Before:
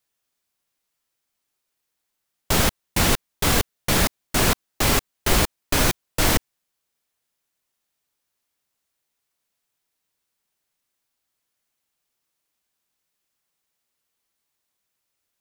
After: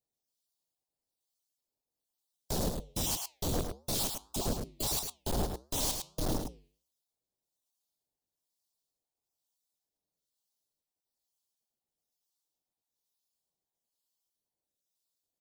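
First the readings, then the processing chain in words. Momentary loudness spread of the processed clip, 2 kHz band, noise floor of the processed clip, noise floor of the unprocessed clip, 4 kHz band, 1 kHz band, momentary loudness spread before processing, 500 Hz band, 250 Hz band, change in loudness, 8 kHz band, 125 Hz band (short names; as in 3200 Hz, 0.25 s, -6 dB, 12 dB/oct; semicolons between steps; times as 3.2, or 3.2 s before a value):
4 LU, -25.5 dB, under -85 dBFS, -79 dBFS, -13.0 dB, -15.0 dB, 2 LU, -11.5 dB, -11.5 dB, -12.5 dB, -11.0 dB, -12.5 dB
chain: random spectral dropouts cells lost 21%; Chebyshev band-stop 800–3900 Hz, order 2; flange 1.6 Hz, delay 5.9 ms, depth 5 ms, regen -88%; harmonic tremolo 1.1 Hz, depth 70%, crossover 930 Hz; hard clip -29 dBFS, distortion -8 dB; on a send: echo 0.106 s -5.5 dB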